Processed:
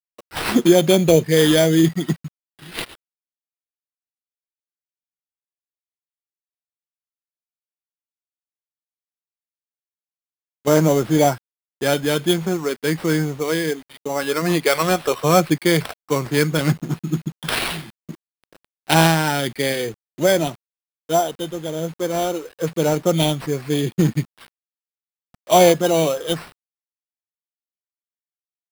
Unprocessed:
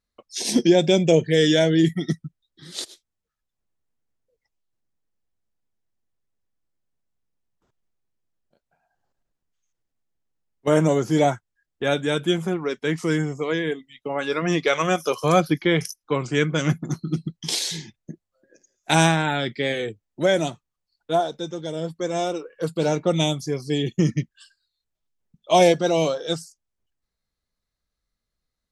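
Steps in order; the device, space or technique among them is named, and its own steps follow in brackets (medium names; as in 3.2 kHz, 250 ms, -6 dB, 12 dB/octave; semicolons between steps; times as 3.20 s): early 8-bit sampler (sample-rate reducer 6.7 kHz, jitter 0%; bit crusher 8-bit); trim +3 dB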